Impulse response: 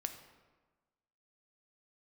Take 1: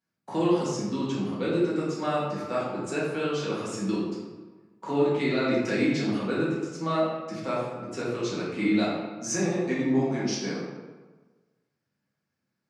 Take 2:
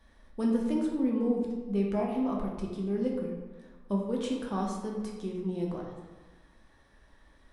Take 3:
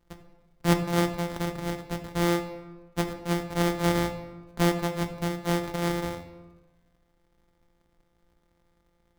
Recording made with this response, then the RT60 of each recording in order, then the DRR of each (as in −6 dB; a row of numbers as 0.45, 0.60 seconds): 3; 1.3, 1.3, 1.3 seconds; −8.0, −2.0, 6.5 decibels